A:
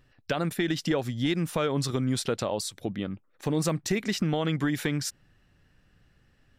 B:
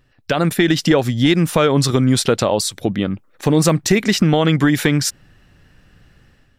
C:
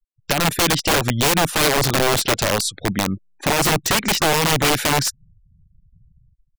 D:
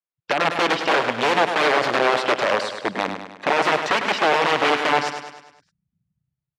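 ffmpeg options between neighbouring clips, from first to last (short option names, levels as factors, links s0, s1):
-af "dynaudnorm=f=120:g=5:m=2.82,volume=1.5"
-af "aeval=exprs='0.631*(cos(1*acos(clip(val(0)/0.631,-1,1)))-cos(1*PI/2))+0.0282*(cos(3*acos(clip(val(0)/0.631,-1,1)))-cos(3*PI/2))+0.0224*(cos(6*acos(clip(val(0)/0.631,-1,1)))-cos(6*PI/2))+0.0224*(cos(8*acos(clip(val(0)/0.631,-1,1)))-cos(8*PI/2))':c=same,afftfilt=real='re*gte(hypot(re,im),0.0158)':imag='im*gte(hypot(re,im),0.0158)':win_size=1024:overlap=0.75,aeval=exprs='(mod(3.76*val(0)+1,2)-1)/3.76':c=same"
-filter_complex "[0:a]highpass=390,lowpass=2500,asplit=2[s0][s1];[s1]aecho=0:1:102|204|306|408|510|612:0.398|0.207|0.108|0.056|0.0291|0.0151[s2];[s0][s2]amix=inputs=2:normalize=0,volume=1.19"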